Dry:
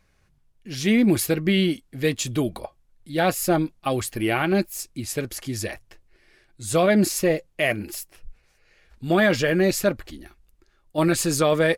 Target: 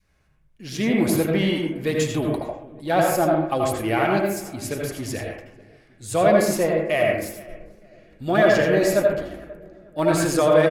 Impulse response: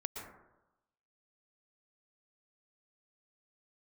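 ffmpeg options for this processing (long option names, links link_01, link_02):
-filter_complex "[0:a]asplit=2[link_01][link_02];[link_02]adelay=493,lowpass=frequency=1300:poles=1,volume=-20dB,asplit=2[link_03][link_04];[link_04]adelay=493,lowpass=frequency=1300:poles=1,volume=0.48,asplit=2[link_05][link_06];[link_06]adelay=493,lowpass=frequency=1300:poles=1,volume=0.48,asplit=2[link_07][link_08];[link_08]adelay=493,lowpass=frequency=1300:poles=1,volume=0.48[link_09];[link_01][link_03][link_05][link_07][link_09]amix=inputs=5:normalize=0,atempo=1.1,asplit=2[link_10][link_11];[link_11]asoftclip=type=tanh:threshold=-24dB,volume=-6dB[link_12];[link_10][link_12]amix=inputs=2:normalize=0[link_13];[1:a]atrim=start_sample=2205,asetrate=66150,aresample=44100[link_14];[link_13][link_14]afir=irnorm=-1:irlink=0,adynamicequalizer=threshold=0.0158:dfrequency=770:dqfactor=0.81:tfrequency=770:tqfactor=0.81:attack=5:release=100:ratio=0.375:range=3.5:mode=boostabove:tftype=bell"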